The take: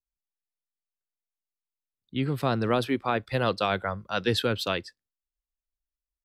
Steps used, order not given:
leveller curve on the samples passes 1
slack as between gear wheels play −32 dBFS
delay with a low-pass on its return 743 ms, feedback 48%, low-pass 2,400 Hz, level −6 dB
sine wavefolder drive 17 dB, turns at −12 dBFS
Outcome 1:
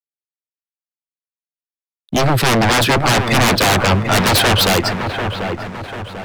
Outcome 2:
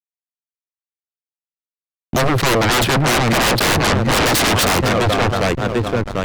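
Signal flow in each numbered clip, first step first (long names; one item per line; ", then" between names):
sine wavefolder, then leveller curve on the samples, then delay with a low-pass on its return, then slack as between gear wheels
leveller curve on the samples, then delay with a low-pass on its return, then slack as between gear wheels, then sine wavefolder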